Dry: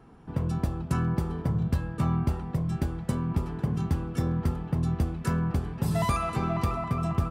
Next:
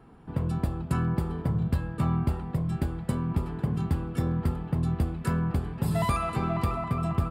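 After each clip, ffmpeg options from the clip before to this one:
-af "equalizer=f=6k:w=5.1:g=-12"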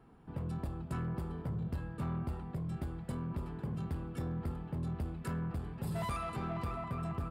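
-af "asoftclip=type=tanh:threshold=-23.5dB,volume=-7.5dB"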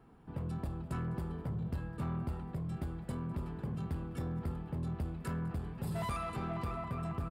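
-filter_complex "[0:a]asplit=2[a][b];[b]adelay=204.1,volume=-18dB,highshelf=f=4k:g=-4.59[c];[a][c]amix=inputs=2:normalize=0"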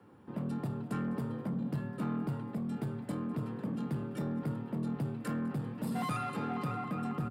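-af "afreqshift=65,volume=2dB"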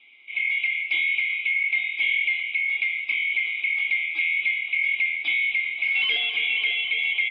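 -af "afftfilt=real='real(if(lt(b,920),b+92*(1-2*mod(floor(b/92),2)),b),0)':imag='imag(if(lt(b,920),b+92*(1-2*mod(floor(b/92),2)),b),0)':win_size=2048:overlap=0.75,afftfilt=real='re*between(b*sr/4096,190,5100)':imag='im*between(b*sr/4096,190,5100)':win_size=4096:overlap=0.75,adynamicequalizer=threshold=0.00447:dfrequency=2700:dqfactor=1.2:tfrequency=2700:tqfactor=1.2:attack=5:release=100:ratio=0.375:range=3.5:mode=boostabove:tftype=bell,volume=5.5dB"

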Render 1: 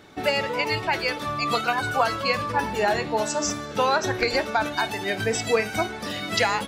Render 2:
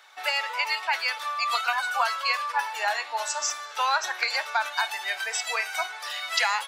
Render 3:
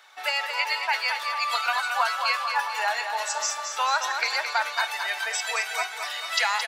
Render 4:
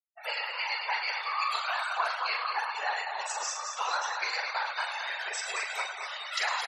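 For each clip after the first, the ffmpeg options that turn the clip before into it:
-af "highpass=f=830:w=0.5412,highpass=f=830:w=1.3066"
-af "aecho=1:1:220|440|660|880|1100|1320:0.447|0.223|0.112|0.0558|0.0279|0.014"
-af "aecho=1:1:40|104|206.4|370.2|632.4:0.631|0.398|0.251|0.158|0.1,afftfilt=real='hypot(re,im)*cos(2*PI*random(0))':imag='hypot(re,im)*sin(2*PI*random(1))':win_size=512:overlap=0.75,afftfilt=real='re*gte(hypot(re,im),0.01)':imag='im*gte(hypot(re,im),0.01)':win_size=1024:overlap=0.75,volume=-2dB"

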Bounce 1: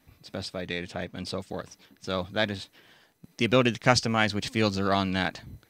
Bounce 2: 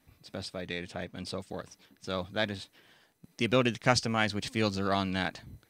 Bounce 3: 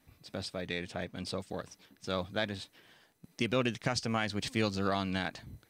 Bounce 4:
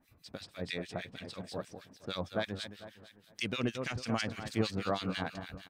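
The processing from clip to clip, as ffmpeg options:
-af "equalizer=f=9.1k:w=3.7:g=4,volume=-4dB"
-af "alimiter=limit=-18dB:level=0:latency=1:release=208"
-filter_complex "[0:a]asplit=2[a][b];[b]aecho=0:1:223|446|669|892|1115:0.355|0.156|0.0687|0.0302|0.0133[c];[a][c]amix=inputs=2:normalize=0,acrossover=split=1500[d][e];[d]aeval=exprs='val(0)*(1-1/2+1/2*cos(2*PI*6.3*n/s))':c=same[f];[e]aeval=exprs='val(0)*(1-1/2-1/2*cos(2*PI*6.3*n/s))':c=same[g];[f][g]amix=inputs=2:normalize=0,volume=2dB"

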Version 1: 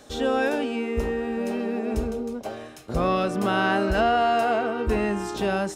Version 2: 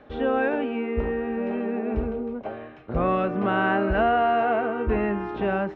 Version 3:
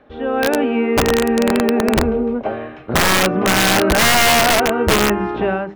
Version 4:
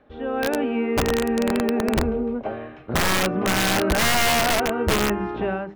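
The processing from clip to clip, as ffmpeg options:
-af "lowpass=f=2.5k:w=0.5412,lowpass=f=2.5k:w=1.3066"
-af "bandreject=f=50:t=h:w=6,bandreject=f=100:t=h:w=6,bandreject=f=150:t=h:w=6,bandreject=f=200:t=h:w=6,dynaudnorm=f=180:g=5:m=13dB,aeval=exprs='(mod(2.37*val(0)+1,2)-1)/2.37':c=same"
-af "lowshelf=f=160:g=4,volume=-7dB"

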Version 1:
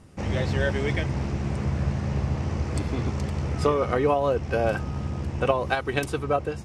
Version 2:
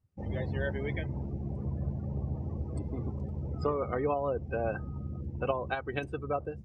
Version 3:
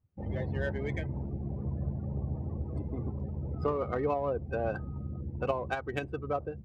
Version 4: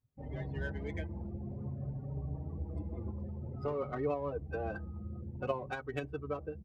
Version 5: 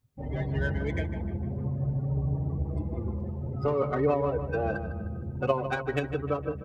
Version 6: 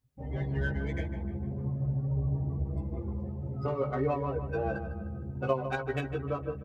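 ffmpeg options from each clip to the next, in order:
-af "afftdn=nr=26:nf=-32,volume=-8dB"
-af "adynamicsmooth=sensitivity=7:basefreq=2.8k"
-filter_complex "[0:a]asplit=2[a][b];[b]adelay=5,afreqshift=0.53[c];[a][c]amix=inputs=2:normalize=1,volume=-2dB"
-filter_complex "[0:a]asplit=2[a][b];[b]adelay=153,lowpass=f=3.1k:p=1,volume=-10dB,asplit=2[c][d];[d]adelay=153,lowpass=f=3.1k:p=1,volume=0.51,asplit=2[e][f];[f]adelay=153,lowpass=f=3.1k:p=1,volume=0.51,asplit=2[g][h];[h]adelay=153,lowpass=f=3.1k:p=1,volume=0.51,asplit=2[i][j];[j]adelay=153,lowpass=f=3.1k:p=1,volume=0.51,asplit=2[k][l];[l]adelay=153,lowpass=f=3.1k:p=1,volume=0.51[m];[a][c][e][g][i][k][m]amix=inputs=7:normalize=0,volume=8.5dB"
-filter_complex "[0:a]asplit=2[a][b];[b]adelay=15,volume=-3dB[c];[a][c]amix=inputs=2:normalize=0,volume=-5.5dB"

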